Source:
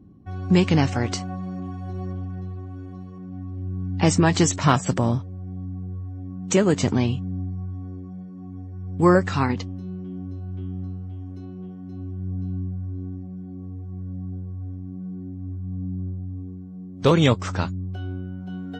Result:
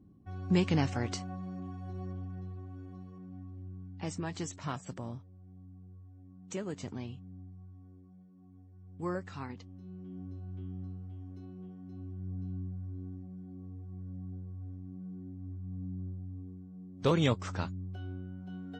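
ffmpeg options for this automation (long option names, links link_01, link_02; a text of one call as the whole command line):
ffmpeg -i in.wav -af "afade=type=out:start_time=3.13:duration=0.82:silence=0.316228,afade=type=in:start_time=9.61:duration=0.6:silence=0.334965" out.wav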